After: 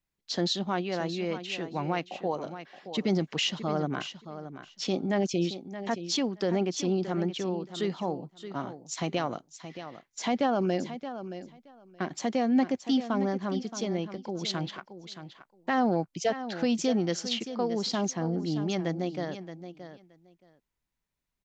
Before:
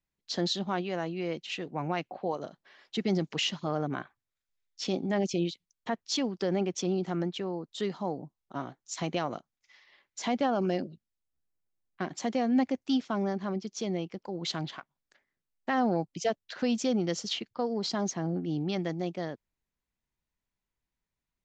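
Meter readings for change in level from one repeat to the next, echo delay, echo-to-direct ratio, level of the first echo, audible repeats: -16.5 dB, 0.623 s, -11.5 dB, -11.5 dB, 2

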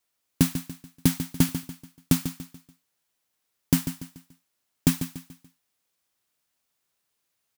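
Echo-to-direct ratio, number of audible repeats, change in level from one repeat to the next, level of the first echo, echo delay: -10.0 dB, 3, -8.5 dB, -10.5 dB, 0.144 s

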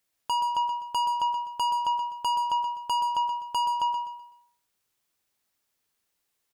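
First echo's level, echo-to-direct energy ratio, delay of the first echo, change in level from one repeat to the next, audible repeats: -7.0 dB, -6.5 dB, 0.126 s, -9.5 dB, 3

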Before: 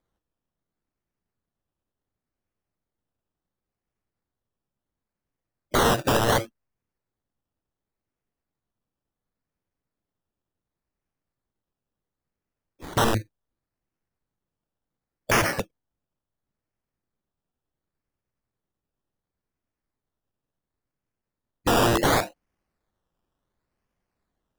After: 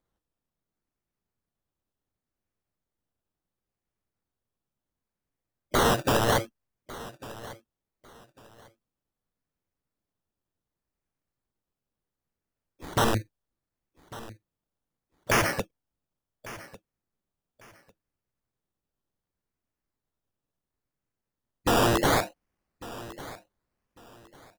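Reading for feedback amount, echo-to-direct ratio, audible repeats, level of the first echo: 24%, -18.0 dB, 2, -18.0 dB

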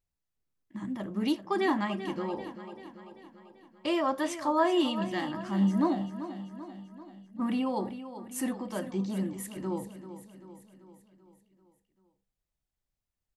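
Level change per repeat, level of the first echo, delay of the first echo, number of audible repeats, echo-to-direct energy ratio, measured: -5.0 dB, -12.0 dB, 0.389 s, 5, -10.5 dB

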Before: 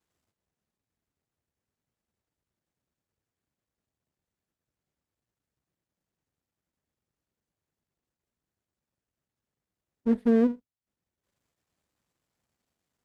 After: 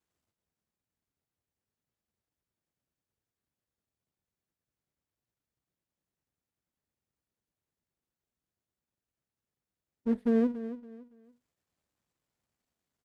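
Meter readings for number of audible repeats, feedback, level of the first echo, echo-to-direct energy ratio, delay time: 3, 29%, -13.0 dB, -12.5 dB, 0.282 s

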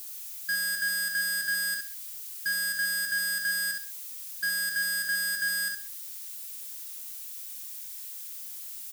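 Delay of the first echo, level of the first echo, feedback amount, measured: 65 ms, -6.0 dB, 27%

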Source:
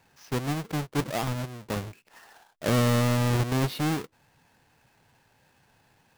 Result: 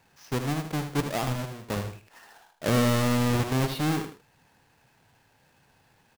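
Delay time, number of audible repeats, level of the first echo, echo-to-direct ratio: 78 ms, 2, -8.5 dB, -8.0 dB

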